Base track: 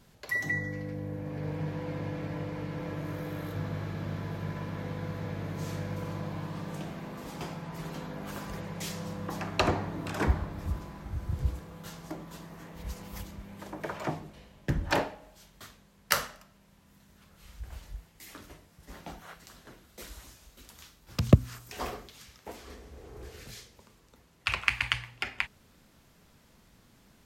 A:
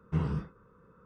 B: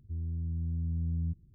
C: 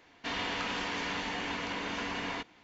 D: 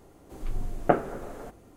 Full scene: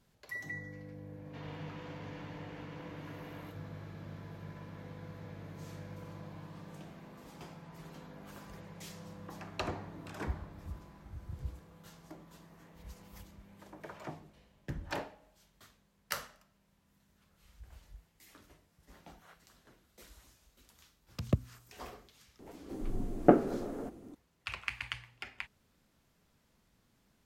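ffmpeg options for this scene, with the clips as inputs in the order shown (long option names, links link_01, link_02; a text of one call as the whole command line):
ffmpeg -i bed.wav -i cue0.wav -i cue1.wav -i cue2.wav -i cue3.wav -filter_complex "[0:a]volume=-11dB[link_01];[3:a]highshelf=frequency=2100:gain=-11[link_02];[4:a]equalizer=frequency=270:width=0.82:gain=13[link_03];[link_02]atrim=end=2.63,asetpts=PTS-STARTPTS,volume=-13.5dB,afade=type=in:duration=0.004:curve=hsin,afade=type=out:start_time=2.626:duration=0.004:curve=hsin,adelay=1090[link_04];[link_03]atrim=end=1.76,asetpts=PTS-STARTPTS,volume=-6.5dB,afade=type=in:duration=0.004:curve=hsin,afade=type=out:start_time=1.756:duration=0.004:curve=hsin,adelay=22390[link_05];[link_01][link_04][link_05]amix=inputs=3:normalize=0" out.wav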